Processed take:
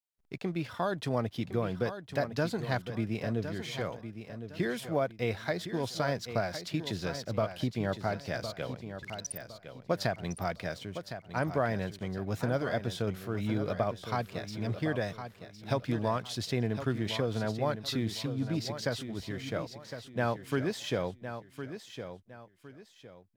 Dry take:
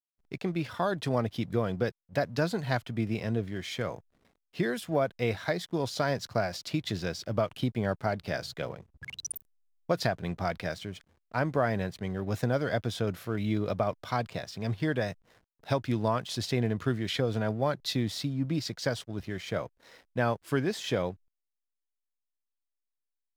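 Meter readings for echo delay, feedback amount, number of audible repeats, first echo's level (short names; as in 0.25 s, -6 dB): 1.06 s, 31%, 3, -10.0 dB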